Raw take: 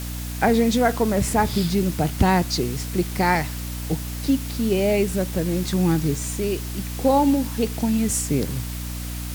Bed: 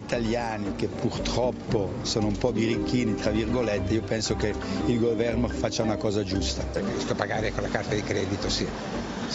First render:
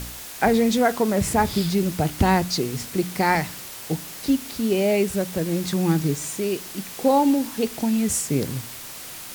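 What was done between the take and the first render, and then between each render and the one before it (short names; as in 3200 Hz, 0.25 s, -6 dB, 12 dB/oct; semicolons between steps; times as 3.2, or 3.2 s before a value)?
de-hum 60 Hz, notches 5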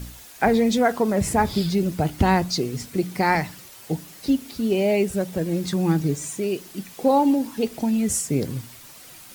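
denoiser 9 dB, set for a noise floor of -38 dBFS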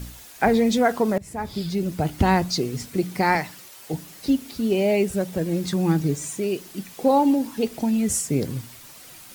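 1.18–2.47 fade in equal-power, from -23 dB; 3.37–3.94 low shelf 180 Hz -11 dB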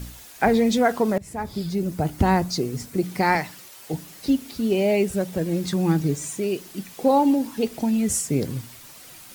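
1.43–3.04 bell 3100 Hz -5 dB 1.5 oct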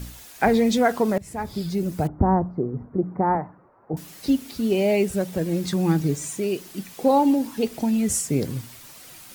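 2.07–3.97 inverse Chebyshev low-pass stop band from 3100 Hz, stop band 50 dB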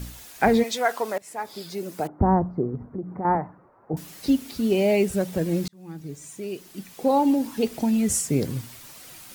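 0.62–2.2 HPF 730 Hz -> 310 Hz; 2.75–3.25 compressor 2.5:1, threshold -31 dBFS; 5.68–7.57 fade in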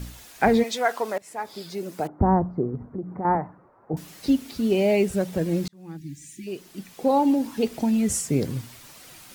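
5.97–6.47 spectral delete 370–1600 Hz; high shelf 8500 Hz -5 dB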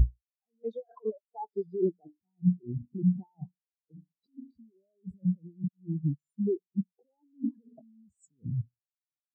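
negative-ratio compressor -33 dBFS, ratio -1; spectral expander 4:1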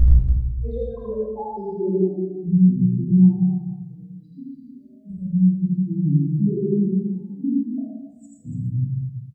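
loudspeakers at several distances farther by 28 m -1 dB, 39 m -4 dB, 98 m -8 dB; shoebox room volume 400 m³, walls mixed, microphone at 2.3 m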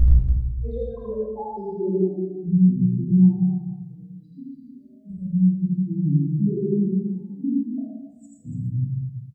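gain -1.5 dB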